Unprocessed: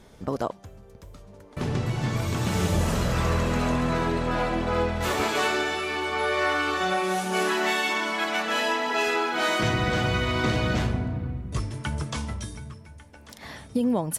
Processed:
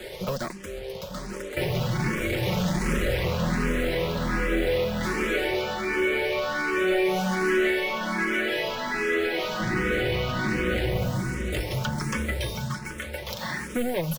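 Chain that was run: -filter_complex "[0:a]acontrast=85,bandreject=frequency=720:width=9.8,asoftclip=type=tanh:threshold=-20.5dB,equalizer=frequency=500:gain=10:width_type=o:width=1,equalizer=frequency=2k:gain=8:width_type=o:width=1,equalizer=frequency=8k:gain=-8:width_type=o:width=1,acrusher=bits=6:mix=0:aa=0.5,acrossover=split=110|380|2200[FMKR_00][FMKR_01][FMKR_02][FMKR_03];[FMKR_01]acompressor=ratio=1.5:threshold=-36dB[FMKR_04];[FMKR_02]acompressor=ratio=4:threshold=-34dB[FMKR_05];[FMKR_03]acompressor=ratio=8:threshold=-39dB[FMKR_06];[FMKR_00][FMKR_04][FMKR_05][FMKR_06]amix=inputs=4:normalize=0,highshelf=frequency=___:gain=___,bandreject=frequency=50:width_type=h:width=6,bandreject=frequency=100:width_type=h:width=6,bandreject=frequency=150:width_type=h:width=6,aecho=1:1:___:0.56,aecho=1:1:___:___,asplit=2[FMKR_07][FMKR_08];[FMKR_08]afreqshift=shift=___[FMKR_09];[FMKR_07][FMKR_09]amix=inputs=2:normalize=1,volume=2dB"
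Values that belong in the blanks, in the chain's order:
2.8k, 7.5, 5.5, 895, 0.299, 1.3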